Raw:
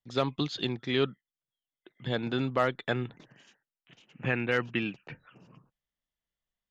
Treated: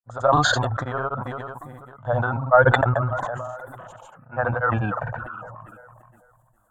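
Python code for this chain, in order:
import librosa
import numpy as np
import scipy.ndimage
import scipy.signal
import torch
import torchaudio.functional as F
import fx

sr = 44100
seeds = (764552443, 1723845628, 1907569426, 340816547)

p1 = 10.0 ** (-23.0 / 20.0) * np.tanh(x / 10.0 ** (-23.0 / 20.0))
p2 = x + (p1 * 10.0 ** (-5.0 / 20.0))
p3 = fx.peak_eq(p2, sr, hz=2000.0, db=-11.5, octaves=1.7)
p4 = p3 + fx.echo_filtered(p3, sr, ms=437, feedback_pct=29, hz=2800.0, wet_db=-20.5, dry=0)
p5 = fx.dereverb_blind(p4, sr, rt60_s=0.57)
p6 = fx.env_lowpass_down(p5, sr, base_hz=2500.0, full_db=-23.5)
p7 = fx.granulator(p6, sr, seeds[0], grain_ms=100.0, per_s=20.0, spray_ms=100.0, spread_st=0)
p8 = fx.curve_eq(p7, sr, hz=(110.0, 160.0, 380.0, 590.0, 1500.0, 2300.0, 3400.0, 5300.0, 7500.0), db=(0, -14, -18, 9, 12, -17, -18, -25, -2))
p9 = fx.sustainer(p8, sr, db_per_s=23.0)
y = p9 * 10.0 ** (5.5 / 20.0)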